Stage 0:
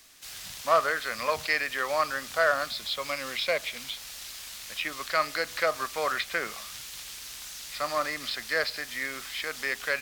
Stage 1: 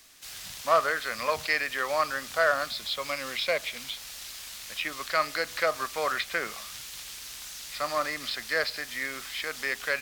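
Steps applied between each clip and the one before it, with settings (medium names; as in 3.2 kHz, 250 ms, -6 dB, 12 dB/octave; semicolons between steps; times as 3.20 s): no audible change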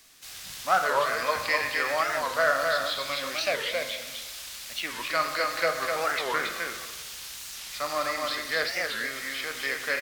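delay 255 ms -3.5 dB; reverberation RT60 1.3 s, pre-delay 5 ms, DRR 5.5 dB; warped record 45 rpm, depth 250 cents; trim -1 dB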